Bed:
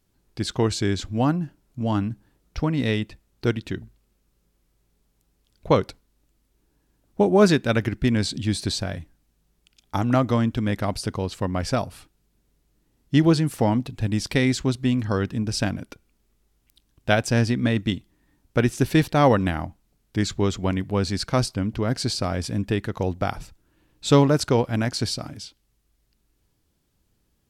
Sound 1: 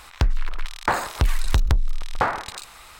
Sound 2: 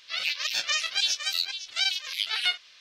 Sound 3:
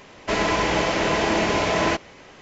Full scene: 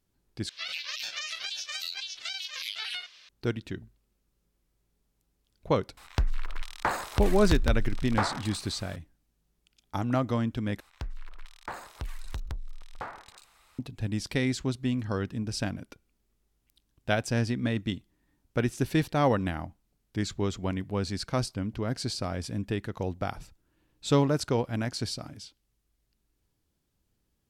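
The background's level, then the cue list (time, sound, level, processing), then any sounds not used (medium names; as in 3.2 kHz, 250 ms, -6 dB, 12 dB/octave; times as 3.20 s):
bed -7 dB
0.49 s: replace with 2 -0.5 dB + compression 12:1, threshold -29 dBFS
5.97 s: add 1 -6.5 dB
10.80 s: replace with 1 -17 dB
not used: 3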